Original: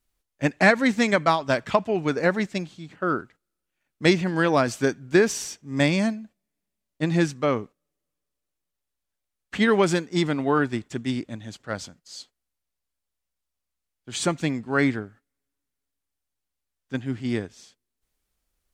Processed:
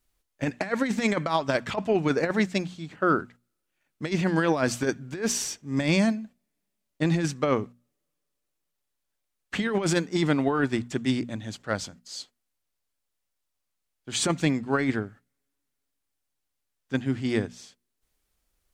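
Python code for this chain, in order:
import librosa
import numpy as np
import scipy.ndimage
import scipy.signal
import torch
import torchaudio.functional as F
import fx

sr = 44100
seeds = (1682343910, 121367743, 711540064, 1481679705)

y = fx.over_compress(x, sr, threshold_db=-22.0, ratio=-0.5)
y = fx.hum_notches(y, sr, base_hz=60, count=4)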